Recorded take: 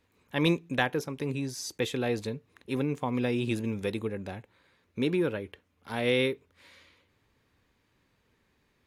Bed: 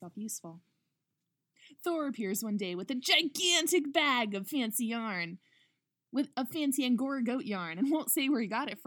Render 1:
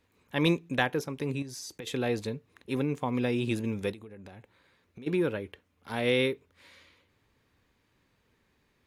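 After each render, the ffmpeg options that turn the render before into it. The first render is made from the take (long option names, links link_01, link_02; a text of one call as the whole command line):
ffmpeg -i in.wav -filter_complex "[0:a]asettb=1/sr,asplit=3[link_01][link_02][link_03];[link_01]atrim=end=1.424[link_04];[link_02]atrim=start=1.42:end=1.87,asetpts=PTS-STARTPTS,afade=type=in:duration=0.004:curve=qsin,afade=type=out:start_time=0.446:duration=0.004:curve=qsin,acompressor=threshold=-37dB:ratio=12:attack=3.2:release=140:knee=1:detection=peak[link_05];[link_03]atrim=start=1.866[link_06];[link_04][link_05]acrossfade=duration=0.004:curve1=hsin:curve2=qsin[link_07];[link_07][link_06]acrossfade=duration=0.004:curve1=qsin:curve2=hsin,asplit=3[link_08][link_09][link_10];[link_08]afade=type=out:start_time=3.92:duration=0.02[link_11];[link_09]acompressor=threshold=-43dB:ratio=8:attack=3.2:release=140:knee=1:detection=peak,afade=type=in:start_time=3.92:duration=0.02,afade=type=out:start_time=5.06:duration=0.02[link_12];[link_10]afade=type=in:start_time=5.06:duration=0.02[link_13];[link_11][link_12][link_13]amix=inputs=3:normalize=0" out.wav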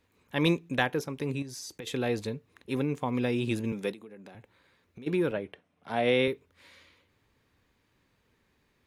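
ffmpeg -i in.wav -filter_complex "[0:a]asettb=1/sr,asplit=3[link_01][link_02][link_03];[link_01]atrim=end=3.724[link_04];[link_02]atrim=start=3.72:end=4.35,asetpts=PTS-STARTPTS,afade=type=in:duration=0.004:curve=qsin,afade=type=out:start_time=0.626:duration=0.004:curve=qsin,highpass=frequency=160:width=0.5412,highpass=frequency=160:width=1.3066[link_05];[link_03]atrim=start=4.346[link_06];[link_04][link_05]acrossfade=duration=0.004:curve1=hsin:curve2=qsin[link_07];[link_07][link_06]acrossfade=duration=0.004:curve1=qsin:curve2=hsin,asettb=1/sr,asplit=3[link_08][link_09][link_10];[link_08]atrim=end=5.314[link_11];[link_09]atrim=start=5.31:end=6.28,asetpts=PTS-STARTPTS,afade=type=in:duration=0.004:curve=qsin,afade=type=out:start_time=0.966:duration=0.004:curve=qsin,highpass=130,equalizer=frequency=160:width_type=q:width=4:gain=8,equalizer=frequency=680:width_type=q:width=4:gain=10,equalizer=frequency=4600:width_type=q:width=4:gain=-6,equalizer=frequency=7000:width_type=q:width=4:gain=-9,lowpass=frequency=9300:width=0.5412,lowpass=frequency=9300:width=1.3066[link_12];[link_10]atrim=start=6.276[link_13];[link_11][link_12]acrossfade=duration=0.004:curve1=hsin:curve2=qsin[link_14];[link_14][link_13]acrossfade=duration=0.004:curve1=qsin:curve2=hsin" out.wav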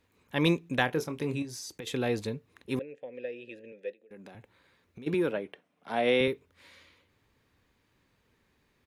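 ffmpeg -i in.wav -filter_complex "[0:a]asplit=3[link_01][link_02][link_03];[link_01]afade=type=out:start_time=0.87:duration=0.02[link_04];[link_02]asplit=2[link_05][link_06];[link_06]adelay=25,volume=-10dB[link_07];[link_05][link_07]amix=inputs=2:normalize=0,afade=type=in:start_time=0.87:duration=0.02,afade=type=out:start_time=1.62:duration=0.02[link_08];[link_03]afade=type=in:start_time=1.62:duration=0.02[link_09];[link_04][link_08][link_09]amix=inputs=3:normalize=0,asettb=1/sr,asplit=3[link_10][link_11][link_12];[link_10]atrim=end=2.794[link_13];[link_11]atrim=start=2.79:end=4.11,asetpts=PTS-STARTPTS,afade=type=in:duration=0.004:curve=qsin,afade=type=out:start_time=1.316:duration=0.004:curve=qsin,asplit=3[link_14][link_15][link_16];[link_14]bandpass=frequency=530:width_type=q:width=8,volume=0dB[link_17];[link_15]bandpass=frequency=1840:width_type=q:width=8,volume=-6dB[link_18];[link_16]bandpass=frequency=2480:width_type=q:width=8,volume=-9dB[link_19];[link_17][link_18][link_19]amix=inputs=3:normalize=0[link_20];[link_12]atrim=start=4.106[link_21];[link_13][link_20]acrossfade=duration=0.004:curve1=hsin:curve2=qsin[link_22];[link_22][link_21]acrossfade=duration=0.004:curve1=qsin:curve2=hsin,asettb=1/sr,asplit=3[link_23][link_24][link_25];[link_23]atrim=end=5.144[link_26];[link_24]atrim=start=5.14:end=6.21,asetpts=PTS-STARTPTS,afade=type=in:duration=0.004:curve=qsin,afade=type=out:start_time=1.066:duration=0.004:curve=qsin,highpass=180[link_27];[link_25]atrim=start=6.206[link_28];[link_26][link_27]acrossfade=duration=0.004:curve1=hsin:curve2=qsin[link_29];[link_29][link_28]acrossfade=duration=0.004:curve1=qsin:curve2=hsin" out.wav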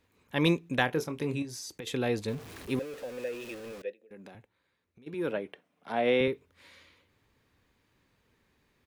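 ffmpeg -i in.wav -filter_complex "[0:a]asettb=1/sr,asplit=3[link_01][link_02][link_03];[link_01]atrim=end=2.284[link_04];[link_02]atrim=start=2.28:end=3.82,asetpts=PTS-STARTPTS,afade=type=in:duration=0.004:curve=qsin,afade=type=out:start_time=1.536:duration=0.004:curve=qsin,aeval=exprs='val(0)+0.5*0.00891*sgn(val(0))':channel_layout=same[link_05];[link_03]atrim=start=3.816[link_06];[link_04][link_05]acrossfade=duration=0.004:curve1=hsin:curve2=qsin[link_07];[link_07][link_06]acrossfade=duration=0.004:curve1=qsin:curve2=hsin,asettb=1/sr,asplit=3[link_08][link_09][link_10];[link_08]atrim=end=5.924[link_11];[link_09]atrim=start=5.92:end=6.33,asetpts=PTS-STARTPTS,afade=type=in:duration=0.004:curve=qsin,afade=type=out:start_time=0.406:duration=0.004:curve=qsin,highshelf=frequency=5200:gain=-11.5[link_12];[link_10]atrim=start=6.326[link_13];[link_11][link_12]acrossfade=duration=0.004:curve1=hsin:curve2=qsin[link_14];[link_14][link_13]acrossfade=duration=0.004:curve1=qsin:curve2=hsin,asplit=3[link_15][link_16][link_17];[link_15]atrim=end=4.49,asetpts=PTS-STARTPTS,afade=type=out:start_time=4.33:duration=0.16:silence=0.281838[link_18];[link_16]atrim=start=4.49:end=5.15,asetpts=PTS-STARTPTS,volume=-11dB[link_19];[link_17]atrim=start=5.15,asetpts=PTS-STARTPTS,afade=type=in:duration=0.16:silence=0.281838[link_20];[link_18][link_19][link_20]concat=n=3:v=0:a=1" out.wav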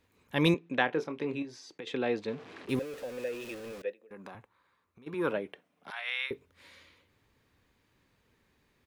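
ffmpeg -i in.wav -filter_complex "[0:a]asettb=1/sr,asplit=3[link_01][link_02][link_03];[link_01]atrim=end=0.544[link_04];[link_02]atrim=start=0.54:end=2.69,asetpts=PTS-STARTPTS,afade=type=in:duration=0.004:curve=qsin,afade=type=out:start_time=2.146:duration=0.004:curve=qsin,highpass=230,lowpass=3400[link_05];[link_03]atrim=start=2.686[link_06];[link_04][link_05]acrossfade=duration=0.004:curve1=hsin:curve2=qsin[link_07];[link_07][link_06]acrossfade=duration=0.004:curve1=qsin:curve2=hsin,asettb=1/sr,asplit=3[link_08][link_09][link_10];[link_08]atrim=end=3.844[link_11];[link_09]atrim=start=3.84:end=5.33,asetpts=PTS-STARTPTS,afade=type=in:duration=0.004:curve=qsin,afade=type=out:start_time=1.486:duration=0.004:curve=qsin,equalizer=frequency=1100:width_type=o:width=0.75:gain=14[link_12];[link_10]atrim=start=5.326[link_13];[link_11][link_12]acrossfade=duration=0.004:curve1=hsin:curve2=qsin[link_14];[link_14][link_13]acrossfade=duration=0.004:curve1=qsin:curve2=hsin,asettb=1/sr,asplit=3[link_15][link_16][link_17];[link_15]atrim=end=5.904[link_18];[link_16]atrim=start=5.9:end=6.31,asetpts=PTS-STARTPTS,afade=type=in:duration=0.004:curve=qsin,afade=type=out:start_time=0.406:duration=0.004:curve=qsin,highpass=frequency=1200:width=0.5412,highpass=frequency=1200:width=1.3066[link_19];[link_17]atrim=start=6.306[link_20];[link_18][link_19]acrossfade=duration=0.004:curve1=hsin:curve2=qsin[link_21];[link_21][link_20]acrossfade=duration=0.004:curve1=qsin:curve2=hsin" out.wav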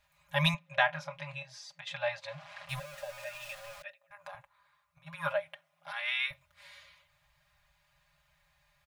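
ffmpeg -i in.wav -af "afftfilt=real='re*(1-between(b*sr/4096,170,540))':imag='im*(1-between(b*sr/4096,170,540))':win_size=4096:overlap=0.75,aecho=1:1:4.9:0.82" out.wav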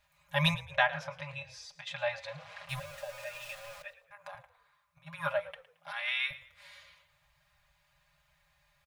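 ffmpeg -i in.wav -filter_complex "[0:a]asplit=4[link_01][link_02][link_03][link_04];[link_02]adelay=111,afreqshift=-39,volume=-16.5dB[link_05];[link_03]adelay=222,afreqshift=-78,volume=-26.4dB[link_06];[link_04]adelay=333,afreqshift=-117,volume=-36.3dB[link_07];[link_01][link_05][link_06][link_07]amix=inputs=4:normalize=0" out.wav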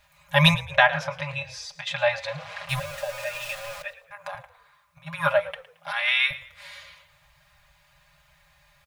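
ffmpeg -i in.wav -af "volume=10.5dB,alimiter=limit=-3dB:level=0:latency=1" out.wav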